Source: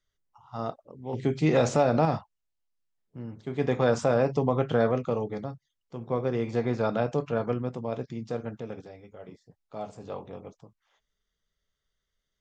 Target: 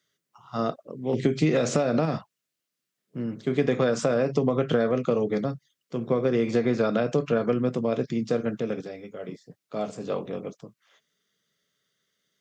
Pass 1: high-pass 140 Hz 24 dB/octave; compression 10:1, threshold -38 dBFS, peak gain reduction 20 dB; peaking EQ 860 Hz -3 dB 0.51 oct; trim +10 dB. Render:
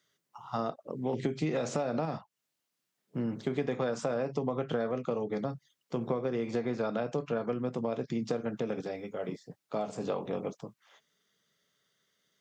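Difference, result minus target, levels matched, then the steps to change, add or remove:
compression: peak gain reduction +9.5 dB; 1 kHz band +3.5 dB
change: compression 10:1, threshold -27.5 dBFS, peak gain reduction 10.5 dB; change: peaking EQ 860 Hz -11.5 dB 0.51 oct

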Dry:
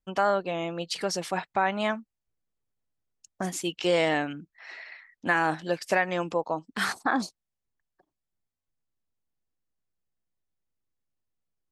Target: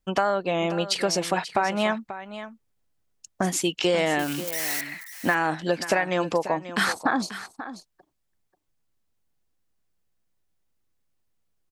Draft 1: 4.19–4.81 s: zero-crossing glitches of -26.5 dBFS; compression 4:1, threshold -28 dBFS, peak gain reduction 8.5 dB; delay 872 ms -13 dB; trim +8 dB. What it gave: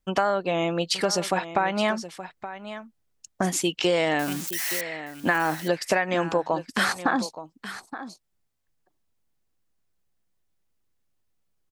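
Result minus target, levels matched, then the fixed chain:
echo 335 ms late
4.19–4.81 s: zero-crossing glitches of -26.5 dBFS; compression 4:1, threshold -28 dBFS, peak gain reduction 8.5 dB; delay 537 ms -13 dB; trim +8 dB

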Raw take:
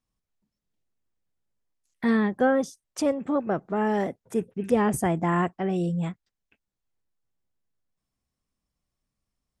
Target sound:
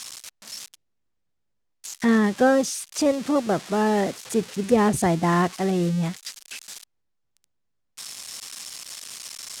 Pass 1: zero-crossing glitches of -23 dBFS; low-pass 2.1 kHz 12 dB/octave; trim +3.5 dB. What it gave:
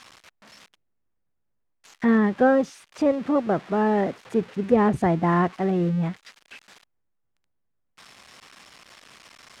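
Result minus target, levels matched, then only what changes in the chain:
8 kHz band -19.0 dB
change: low-pass 6.9 kHz 12 dB/octave

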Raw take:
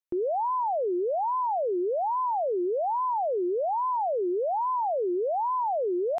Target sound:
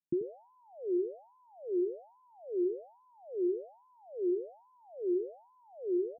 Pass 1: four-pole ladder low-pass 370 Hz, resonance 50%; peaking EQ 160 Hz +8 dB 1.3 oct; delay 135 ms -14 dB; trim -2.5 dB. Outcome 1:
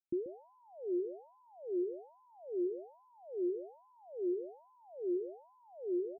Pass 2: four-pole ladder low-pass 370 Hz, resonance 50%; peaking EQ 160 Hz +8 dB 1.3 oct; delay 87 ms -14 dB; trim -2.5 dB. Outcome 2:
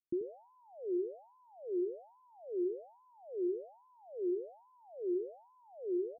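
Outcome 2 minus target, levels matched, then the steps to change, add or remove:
125 Hz band -6.5 dB
change: peaking EQ 160 Hz +19.5 dB 1.3 oct

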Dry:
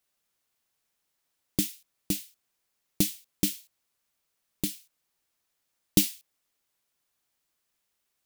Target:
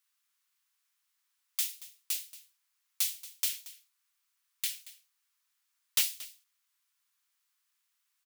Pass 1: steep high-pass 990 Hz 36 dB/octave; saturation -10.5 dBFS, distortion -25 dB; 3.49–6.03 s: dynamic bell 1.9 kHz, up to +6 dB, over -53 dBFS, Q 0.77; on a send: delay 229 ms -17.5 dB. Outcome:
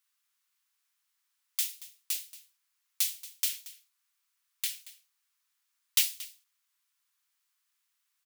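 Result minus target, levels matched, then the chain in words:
saturation: distortion -11 dB
steep high-pass 990 Hz 36 dB/octave; saturation -19 dBFS, distortion -14 dB; 3.49–6.03 s: dynamic bell 1.9 kHz, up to +6 dB, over -53 dBFS, Q 0.77; on a send: delay 229 ms -17.5 dB

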